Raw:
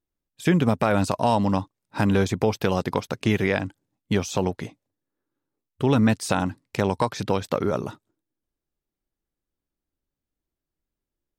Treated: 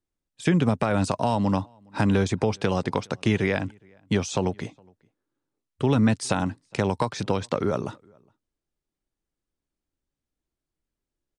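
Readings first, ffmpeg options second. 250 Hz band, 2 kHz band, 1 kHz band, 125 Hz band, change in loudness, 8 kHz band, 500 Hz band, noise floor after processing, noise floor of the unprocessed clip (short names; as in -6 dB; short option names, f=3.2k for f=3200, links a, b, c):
-1.0 dB, -2.0 dB, -2.5 dB, 0.0 dB, -1.5 dB, -0.5 dB, -2.0 dB, under -85 dBFS, under -85 dBFS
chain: -filter_complex "[0:a]acrossover=split=200[a][b];[b]acompressor=threshold=-20dB:ratio=6[c];[a][c]amix=inputs=2:normalize=0,asplit=2[d][e];[e]adelay=414,volume=-30dB,highshelf=f=4k:g=-9.32[f];[d][f]amix=inputs=2:normalize=0,aresample=22050,aresample=44100"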